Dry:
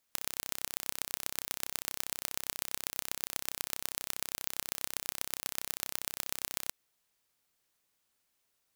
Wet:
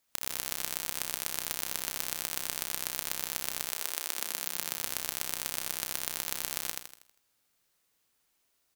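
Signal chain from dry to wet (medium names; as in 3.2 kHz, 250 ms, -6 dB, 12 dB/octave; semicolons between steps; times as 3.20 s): 3.65–4.75 s: high-pass 450 Hz -> 120 Hz 24 dB/octave; on a send: feedback delay 80 ms, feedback 45%, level -3.5 dB; on the sum: trim +1.5 dB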